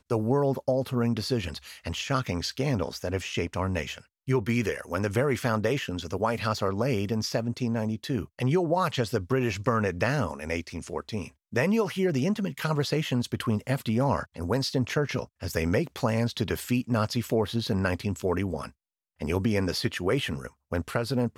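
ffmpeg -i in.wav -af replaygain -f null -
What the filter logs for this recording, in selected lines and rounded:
track_gain = +9.3 dB
track_peak = 0.189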